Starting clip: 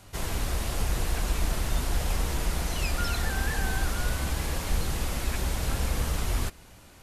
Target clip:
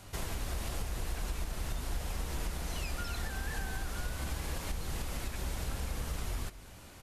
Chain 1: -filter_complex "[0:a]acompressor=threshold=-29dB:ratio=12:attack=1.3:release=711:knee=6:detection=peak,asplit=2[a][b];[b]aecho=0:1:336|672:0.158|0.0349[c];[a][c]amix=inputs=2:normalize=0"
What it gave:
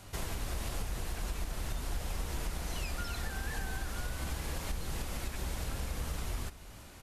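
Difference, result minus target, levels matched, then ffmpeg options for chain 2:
echo 0.126 s late
-filter_complex "[0:a]acompressor=threshold=-29dB:ratio=12:attack=1.3:release=711:knee=6:detection=peak,asplit=2[a][b];[b]aecho=0:1:210|420:0.158|0.0349[c];[a][c]amix=inputs=2:normalize=0"

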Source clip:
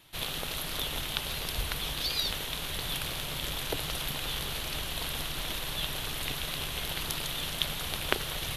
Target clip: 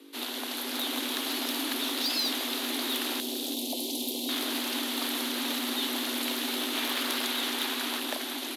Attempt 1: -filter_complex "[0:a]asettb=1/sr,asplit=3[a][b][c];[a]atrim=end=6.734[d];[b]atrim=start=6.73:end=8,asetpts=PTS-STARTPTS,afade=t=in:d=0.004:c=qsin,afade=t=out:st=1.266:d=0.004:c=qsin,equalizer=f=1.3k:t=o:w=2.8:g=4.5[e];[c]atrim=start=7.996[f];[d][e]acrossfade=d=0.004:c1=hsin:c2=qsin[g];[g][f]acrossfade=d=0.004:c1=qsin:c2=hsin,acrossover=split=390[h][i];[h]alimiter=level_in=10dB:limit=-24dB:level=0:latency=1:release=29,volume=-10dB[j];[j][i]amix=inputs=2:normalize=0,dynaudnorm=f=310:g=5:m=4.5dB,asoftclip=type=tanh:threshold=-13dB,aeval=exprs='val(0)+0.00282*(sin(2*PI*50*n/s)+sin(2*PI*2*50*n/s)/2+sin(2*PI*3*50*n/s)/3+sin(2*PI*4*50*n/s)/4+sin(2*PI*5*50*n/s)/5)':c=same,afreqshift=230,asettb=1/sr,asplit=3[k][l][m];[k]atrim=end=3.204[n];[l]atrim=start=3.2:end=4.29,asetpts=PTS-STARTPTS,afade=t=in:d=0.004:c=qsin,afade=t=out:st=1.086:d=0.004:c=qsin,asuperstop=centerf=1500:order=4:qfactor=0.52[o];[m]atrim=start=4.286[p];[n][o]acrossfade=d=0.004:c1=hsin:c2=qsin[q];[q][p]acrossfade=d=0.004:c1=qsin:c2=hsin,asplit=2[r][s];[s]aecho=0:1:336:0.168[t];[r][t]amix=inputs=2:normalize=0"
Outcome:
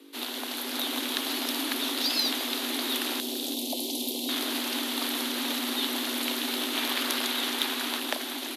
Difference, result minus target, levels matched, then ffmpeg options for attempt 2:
soft clip: distortion -7 dB
-filter_complex "[0:a]asettb=1/sr,asplit=3[a][b][c];[a]atrim=end=6.734[d];[b]atrim=start=6.73:end=8,asetpts=PTS-STARTPTS,afade=t=in:d=0.004:c=qsin,afade=t=out:st=1.266:d=0.004:c=qsin,equalizer=f=1.3k:t=o:w=2.8:g=4.5[e];[c]atrim=start=7.996[f];[d][e]acrossfade=d=0.004:c1=hsin:c2=qsin[g];[g][f]acrossfade=d=0.004:c1=qsin:c2=hsin,acrossover=split=390[h][i];[h]alimiter=level_in=10dB:limit=-24dB:level=0:latency=1:release=29,volume=-10dB[j];[j][i]amix=inputs=2:normalize=0,dynaudnorm=f=310:g=5:m=4.5dB,asoftclip=type=tanh:threshold=-22.5dB,aeval=exprs='val(0)+0.00282*(sin(2*PI*50*n/s)+sin(2*PI*2*50*n/s)/2+sin(2*PI*3*50*n/s)/3+sin(2*PI*4*50*n/s)/4+sin(2*PI*5*50*n/s)/5)':c=same,afreqshift=230,asettb=1/sr,asplit=3[k][l][m];[k]atrim=end=3.204[n];[l]atrim=start=3.2:end=4.29,asetpts=PTS-STARTPTS,afade=t=in:d=0.004:c=qsin,afade=t=out:st=1.086:d=0.004:c=qsin,asuperstop=centerf=1500:order=4:qfactor=0.52[o];[m]atrim=start=4.286[p];[n][o]acrossfade=d=0.004:c1=hsin:c2=qsin[q];[q][p]acrossfade=d=0.004:c1=qsin:c2=hsin,asplit=2[r][s];[s]aecho=0:1:336:0.168[t];[r][t]amix=inputs=2:normalize=0"

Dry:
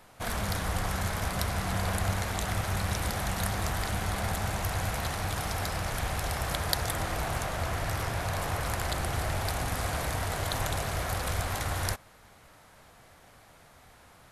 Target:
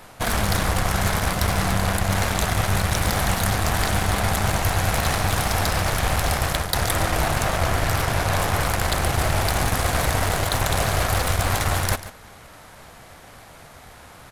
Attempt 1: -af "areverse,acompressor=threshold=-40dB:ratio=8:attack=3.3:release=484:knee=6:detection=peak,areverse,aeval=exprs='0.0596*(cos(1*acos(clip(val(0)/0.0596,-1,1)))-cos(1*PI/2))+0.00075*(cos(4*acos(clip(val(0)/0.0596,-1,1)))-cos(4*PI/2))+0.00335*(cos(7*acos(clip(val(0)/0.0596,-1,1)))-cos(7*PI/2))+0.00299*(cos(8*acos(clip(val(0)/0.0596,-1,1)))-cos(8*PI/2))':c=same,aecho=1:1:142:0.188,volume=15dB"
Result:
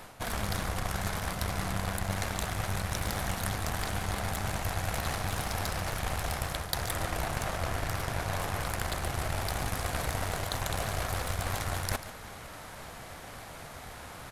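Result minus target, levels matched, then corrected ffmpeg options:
compressor: peak gain reduction +9 dB
-af "areverse,acompressor=threshold=-30dB:ratio=8:attack=3.3:release=484:knee=6:detection=peak,areverse,aeval=exprs='0.0596*(cos(1*acos(clip(val(0)/0.0596,-1,1)))-cos(1*PI/2))+0.00075*(cos(4*acos(clip(val(0)/0.0596,-1,1)))-cos(4*PI/2))+0.00335*(cos(7*acos(clip(val(0)/0.0596,-1,1)))-cos(7*PI/2))+0.00299*(cos(8*acos(clip(val(0)/0.0596,-1,1)))-cos(8*PI/2))':c=same,aecho=1:1:142:0.188,volume=15dB"

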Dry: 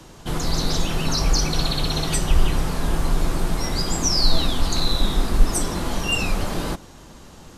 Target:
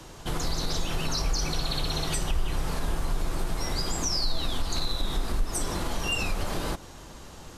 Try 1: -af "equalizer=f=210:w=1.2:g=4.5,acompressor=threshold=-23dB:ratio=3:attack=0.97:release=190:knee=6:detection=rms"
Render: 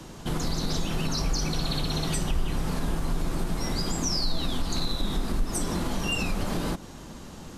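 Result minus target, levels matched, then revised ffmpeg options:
250 Hz band +5.0 dB
-af "equalizer=f=210:w=1.2:g=-4.5,acompressor=threshold=-23dB:ratio=3:attack=0.97:release=190:knee=6:detection=rms"

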